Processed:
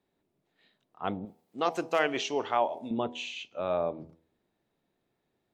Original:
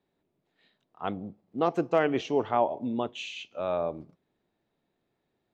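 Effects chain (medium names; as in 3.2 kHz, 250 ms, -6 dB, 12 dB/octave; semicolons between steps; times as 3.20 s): de-hum 81.15 Hz, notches 12; 1.25–2.91 s: tilt EQ +3.5 dB/octave; WMA 128 kbps 44.1 kHz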